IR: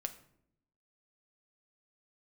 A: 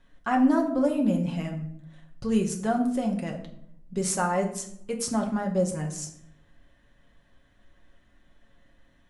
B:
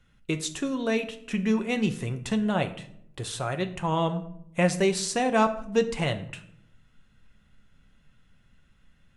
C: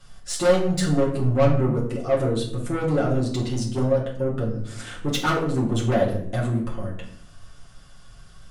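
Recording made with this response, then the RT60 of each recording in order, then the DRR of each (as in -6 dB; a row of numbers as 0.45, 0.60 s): B; 0.70, 0.70, 0.70 s; 0.5, 6.5, -5.0 dB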